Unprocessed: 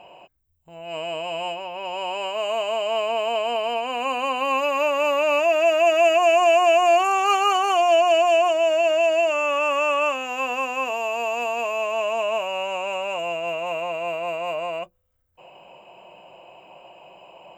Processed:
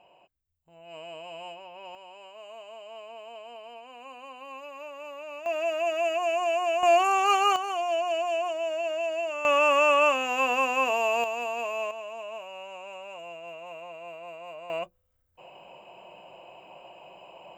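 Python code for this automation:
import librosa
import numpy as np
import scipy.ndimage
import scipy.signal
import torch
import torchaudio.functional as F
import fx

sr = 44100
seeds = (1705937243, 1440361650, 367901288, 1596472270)

y = fx.gain(x, sr, db=fx.steps((0.0, -12.5), (1.95, -20.0), (5.46, -10.0), (6.83, -3.0), (7.56, -10.5), (9.45, 0.5), (11.24, -6.0), (11.91, -14.5), (14.7, -2.0)))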